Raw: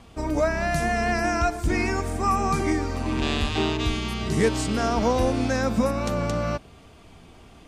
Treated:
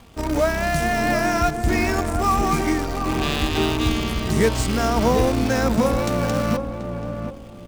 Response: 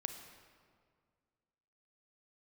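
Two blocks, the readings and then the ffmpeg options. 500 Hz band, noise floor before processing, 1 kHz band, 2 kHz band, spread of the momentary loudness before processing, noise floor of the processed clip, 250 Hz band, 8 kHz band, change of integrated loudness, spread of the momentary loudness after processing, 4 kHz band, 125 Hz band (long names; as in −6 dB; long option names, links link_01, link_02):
+3.5 dB, −49 dBFS, +3.5 dB, +3.0 dB, 4 LU, −38 dBFS, +3.5 dB, +4.5 dB, +3.0 dB, 6 LU, +3.5 dB, +3.5 dB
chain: -filter_complex "[0:a]asplit=2[link_01][link_02];[link_02]acrusher=bits=5:dc=4:mix=0:aa=0.000001,volume=-4dB[link_03];[link_01][link_03]amix=inputs=2:normalize=0,asplit=2[link_04][link_05];[link_05]adelay=733,lowpass=frequency=820:poles=1,volume=-5dB,asplit=2[link_06][link_07];[link_07]adelay=733,lowpass=frequency=820:poles=1,volume=0.3,asplit=2[link_08][link_09];[link_09]adelay=733,lowpass=frequency=820:poles=1,volume=0.3,asplit=2[link_10][link_11];[link_11]adelay=733,lowpass=frequency=820:poles=1,volume=0.3[link_12];[link_04][link_06][link_08][link_10][link_12]amix=inputs=5:normalize=0,volume=-1.5dB"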